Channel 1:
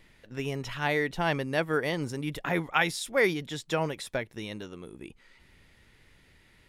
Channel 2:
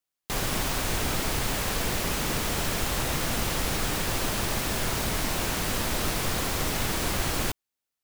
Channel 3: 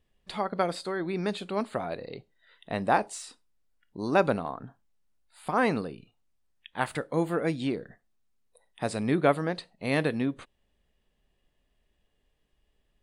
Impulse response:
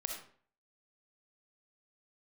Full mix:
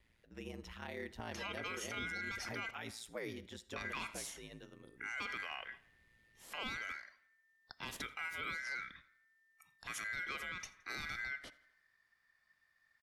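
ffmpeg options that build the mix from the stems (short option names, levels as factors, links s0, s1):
-filter_complex "[0:a]aeval=exprs='val(0)*sin(2*PI*57*n/s)':c=same,volume=0.224,asplit=2[s0][s1];[s1]volume=0.237[s2];[2:a]asoftclip=type=tanh:threshold=0.141,aeval=exprs='val(0)*sin(2*PI*1800*n/s)':c=same,bandreject=f=2600:w=28,adelay=1050,volume=0.841,asplit=3[s3][s4][s5];[s3]atrim=end=2.71,asetpts=PTS-STARTPTS,afade=t=out:st=2.706:d=0.004:c=hsin[s6];[s4]atrim=start=2.71:end=3.76,asetpts=PTS-STARTPTS,volume=0[s7];[s5]atrim=start=3.76,asetpts=PTS-STARTPTS,afade=t=in:d=0.004:c=hsin[s8];[s6][s7][s8]concat=n=3:v=0:a=1,asplit=3[s9][s10][s11];[s10]volume=0.1[s12];[s11]volume=0.0631[s13];[3:a]atrim=start_sample=2205[s14];[s2][s12]amix=inputs=2:normalize=0[s15];[s15][s14]afir=irnorm=-1:irlink=0[s16];[s13]aecho=0:1:84|168|252|336|420|504|588:1|0.49|0.24|0.118|0.0576|0.0282|0.0138[s17];[s0][s9][s16][s17]amix=inputs=4:normalize=0,acrossover=split=450|3000[s18][s19][s20];[s19]acompressor=threshold=0.00447:ratio=1.5[s21];[s18][s21][s20]amix=inputs=3:normalize=0,alimiter=level_in=2.66:limit=0.0631:level=0:latency=1:release=37,volume=0.376"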